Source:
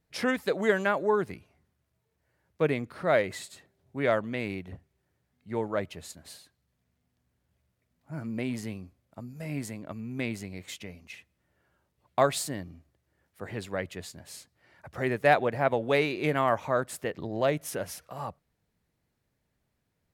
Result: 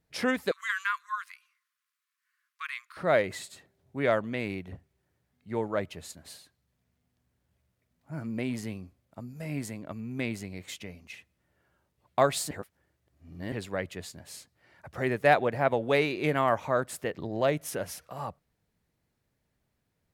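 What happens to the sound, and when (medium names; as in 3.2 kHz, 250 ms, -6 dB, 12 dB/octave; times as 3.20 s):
0.51–2.97 s: brick-wall FIR high-pass 1 kHz
12.51–13.52 s: reverse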